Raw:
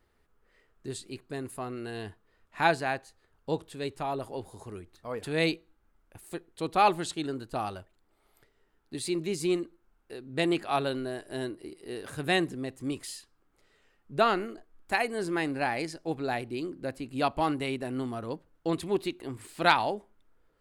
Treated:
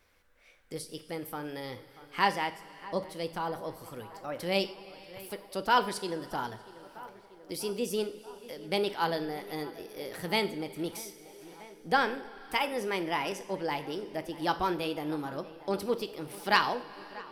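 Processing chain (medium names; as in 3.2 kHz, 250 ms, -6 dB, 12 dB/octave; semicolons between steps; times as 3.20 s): tape echo 760 ms, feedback 81%, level -18 dB, low-pass 1.2 kHz; two-slope reverb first 0.58 s, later 3.3 s, from -16 dB, DRR 9 dB; wide varispeed 1.19×; tape noise reduction on one side only encoder only; trim -2 dB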